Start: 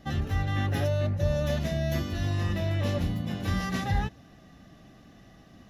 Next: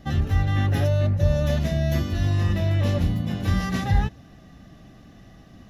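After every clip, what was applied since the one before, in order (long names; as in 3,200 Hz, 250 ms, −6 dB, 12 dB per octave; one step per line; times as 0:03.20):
low-shelf EQ 160 Hz +6 dB
level +2.5 dB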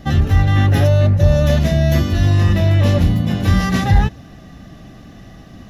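soft clipping −10 dBFS, distortion −26 dB
level +9 dB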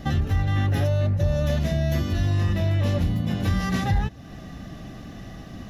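downward compressor 2 to 1, threshold −27 dBFS, peak gain reduction 11 dB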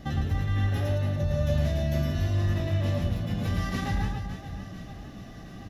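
reverse bouncing-ball delay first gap 110 ms, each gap 1.6×, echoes 5
level −6.5 dB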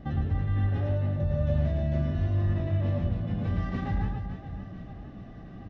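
head-to-tape spacing loss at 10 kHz 34 dB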